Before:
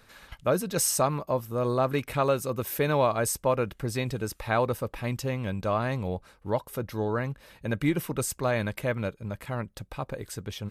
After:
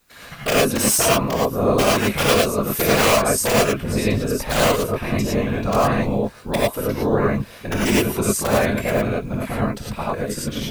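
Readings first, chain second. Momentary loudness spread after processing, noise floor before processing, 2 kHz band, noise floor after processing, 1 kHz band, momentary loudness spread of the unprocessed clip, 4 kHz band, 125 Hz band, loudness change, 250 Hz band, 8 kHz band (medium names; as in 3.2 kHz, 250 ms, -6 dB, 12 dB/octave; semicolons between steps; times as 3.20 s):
9 LU, -60 dBFS, +11.5 dB, -41 dBFS, +8.5 dB, 11 LU, +15.0 dB, +6.5 dB, +9.5 dB, +10.5 dB, +10.0 dB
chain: gate -54 dBFS, range -15 dB; in parallel at -1 dB: compression 16:1, threshold -32 dBFS, peak gain reduction 14 dB; on the sum: integer overflow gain 14 dB; added noise white -66 dBFS; whisper effect; gated-style reverb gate 130 ms rising, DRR -5.5 dB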